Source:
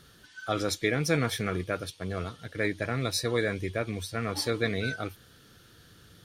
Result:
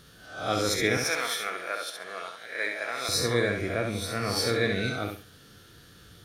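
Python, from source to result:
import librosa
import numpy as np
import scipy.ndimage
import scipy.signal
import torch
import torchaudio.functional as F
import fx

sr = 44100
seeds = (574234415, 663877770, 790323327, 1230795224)

y = fx.spec_swells(x, sr, rise_s=0.51)
y = fx.highpass(y, sr, hz=720.0, slope=12, at=(0.97, 3.09))
y = fx.echo_feedback(y, sr, ms=67, feedback_pct=24, wet_db=-5)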